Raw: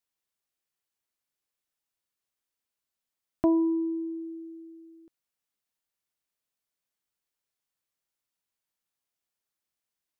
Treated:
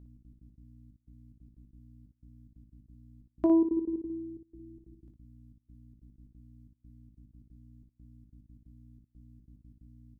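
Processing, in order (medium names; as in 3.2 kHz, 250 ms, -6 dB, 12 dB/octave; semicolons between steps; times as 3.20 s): dynamic bell 350 Hz, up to +6 dB, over -36 dBFS, Q 1.4; hum 60 Hz, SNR 15 dB; trance gate "xx.x.x.xxxx..x" 182 bpm -24 dB; early reflections 20 ms -10 dB, 58 ms -6 dB; trim -6 dB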